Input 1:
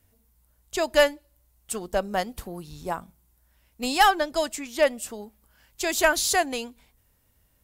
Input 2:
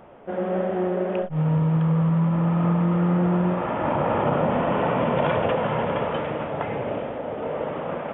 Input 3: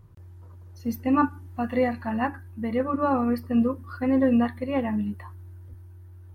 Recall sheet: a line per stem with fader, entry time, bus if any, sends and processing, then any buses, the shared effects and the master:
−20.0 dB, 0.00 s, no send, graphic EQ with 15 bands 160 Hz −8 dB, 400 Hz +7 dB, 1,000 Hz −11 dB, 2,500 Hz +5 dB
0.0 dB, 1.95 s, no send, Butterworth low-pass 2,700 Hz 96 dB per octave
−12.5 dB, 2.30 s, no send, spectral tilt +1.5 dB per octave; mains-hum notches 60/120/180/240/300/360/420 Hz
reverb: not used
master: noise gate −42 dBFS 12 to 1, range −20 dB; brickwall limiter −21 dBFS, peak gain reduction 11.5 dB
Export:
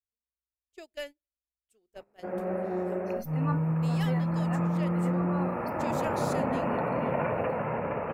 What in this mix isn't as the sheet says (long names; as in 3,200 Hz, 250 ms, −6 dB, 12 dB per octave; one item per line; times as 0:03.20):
stem 2 0.0 dB → −7.0 dB
master: missing brickwall limiter −21 dBFS, peak gain reduction 11.5 dB